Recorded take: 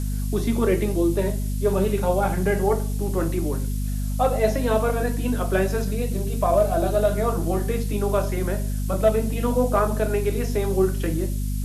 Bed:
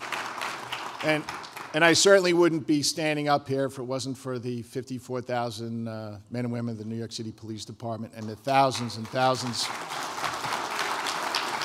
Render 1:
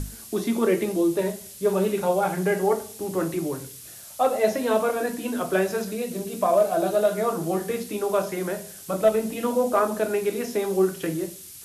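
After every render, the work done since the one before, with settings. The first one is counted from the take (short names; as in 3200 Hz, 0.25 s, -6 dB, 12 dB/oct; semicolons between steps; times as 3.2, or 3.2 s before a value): notches 50/100/150/200/250 Hz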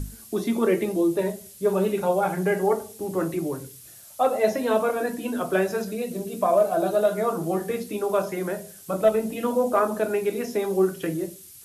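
denoiser 6 dB, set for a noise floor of -43 dBFS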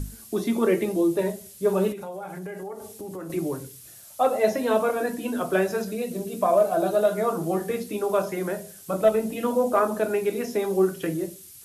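1.92–3.3 compressor, threshold -33 dBFS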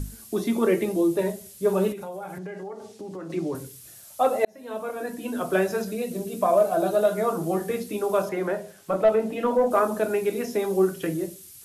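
2.38–3.55 Chebyshev band-pass 160–5200 Hz; 4.45–5.54 fade in; 8.29–9.71 overdrive pedal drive 13 dB, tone 1100 Hz, clips at -9 dBFS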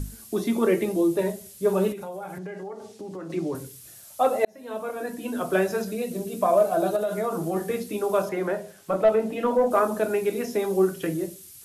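6.96–7.56 compressor, threshold -22 dBFS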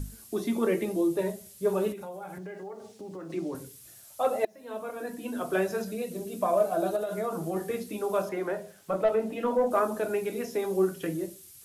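bit-crush 11-bit; flange 0.68 Hz, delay 1.2 ms, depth 3 ms, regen -80%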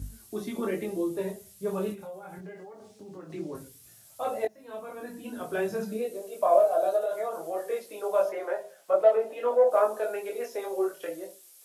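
high-pass sweep 69 Hz -> 550 Hz, 5.55–6.22; chorus voices 4, 0.21 Hz, delay 22 ms, depth 4 ms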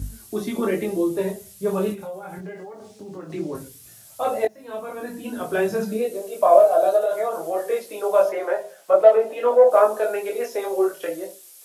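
gain +7.5 dB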